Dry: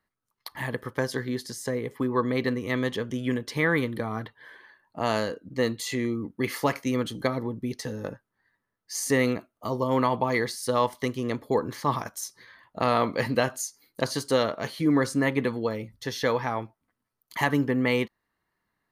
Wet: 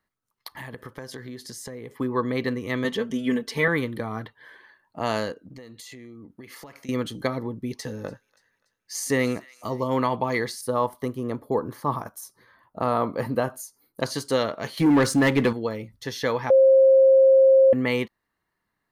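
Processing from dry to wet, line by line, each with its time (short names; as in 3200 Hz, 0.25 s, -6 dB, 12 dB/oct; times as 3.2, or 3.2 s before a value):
0.53–1.93 compressor 5:1, threshold -34 dBFS
2.84–3.68 comb 4.5 ms, depth 79%
5.32–6.89 compressor 16:1, threshold -39 dBFS
7.42–9.88 thin delay 0.288 s, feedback 44%, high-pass 1500 Hz, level -20.5 dB
10.61–14.02 band shelf 3700 Hz -10 dB 2.4 oct
14.77–15.53 sample leveller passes 2
16.5–17.73 bleep 533 Hz -11.5 dBFS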